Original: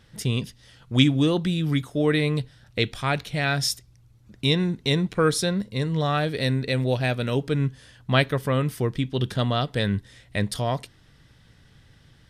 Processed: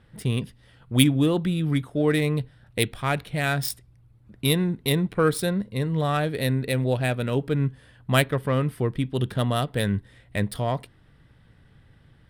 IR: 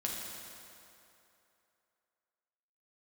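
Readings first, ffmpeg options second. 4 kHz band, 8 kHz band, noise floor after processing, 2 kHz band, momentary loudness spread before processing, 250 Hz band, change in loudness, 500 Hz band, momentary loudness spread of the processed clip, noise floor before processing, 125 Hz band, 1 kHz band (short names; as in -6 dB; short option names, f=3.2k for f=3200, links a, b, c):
-3.0 dB, +1.0 dB, -56 dBFS, -1.0 dB, 7 LU, 0.0 dB, -0.5 dB, 0.0 dB, 7 LU, -56 dBFS, 0.0 dB, -0.5 dB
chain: -af "adynamicsmooth=sensitivity=1:basefreq=2.9k,aexciter=amount=4.4:drive=9.9:freq=8.8k"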